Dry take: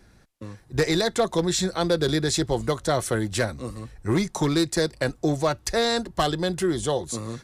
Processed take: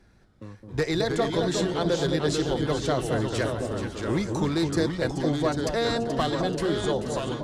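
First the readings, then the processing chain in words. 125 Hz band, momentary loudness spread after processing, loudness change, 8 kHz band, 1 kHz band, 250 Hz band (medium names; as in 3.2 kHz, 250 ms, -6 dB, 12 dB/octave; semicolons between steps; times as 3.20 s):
-0.5 dB, 5 LU, -1.5 dB, -7.5 dB, -2.0 dB, -0.5 dB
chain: treble shelf 6.6 kHz -9.5 dB; on a send: echo whose repeats swap between lows and highs 215 ms, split 930 Hz, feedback 60%, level -4.5 dB; on the sum: ever faster or slower copies 215 ms, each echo -2 st, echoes 2, each echo -6 dB; trim -3.5 dB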